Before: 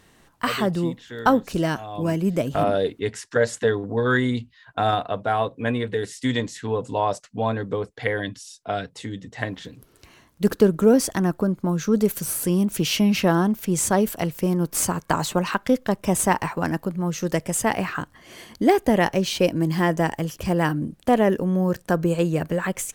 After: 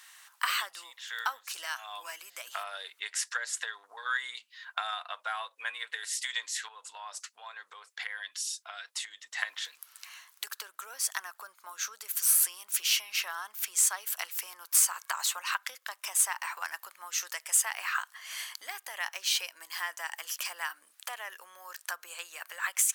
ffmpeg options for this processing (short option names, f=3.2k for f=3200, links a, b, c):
-filter_complex "[0:a]asettb=1/sr,asplit=3[a][b][c];[a]atrim=end=6.684[d];[b]atrim=start=6.68:end=9.37,asetpts=PTS-STARTPTS,afade=t=in:d=0.004:c=qsin,afade=t=out:st=2.686:d=0.004:c=qsin,acompressor=threshold=-36dB:ratio=4:attack=3.2:release=140:knee=1:detection=peak[e];[c]atrim=start=9.366[f];[d][e]acrossfade=d=0.004:c1=hsin:c2=qsin[g];[g][f]acrossfade=d=0.004:c1=qsin:c2=hsin,acompressor=threshold=-28dB:ratio=6,highpass=f=1.1k:w=0.5412,highpass=f=1.1k:w=1.3066,highshelf=f=5k:g=6,volume=3.5dB"